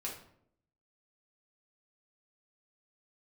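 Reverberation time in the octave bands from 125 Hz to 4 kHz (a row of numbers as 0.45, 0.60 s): 0.90, 0.85, 0.75, 0.60, 0.50, 0.45 s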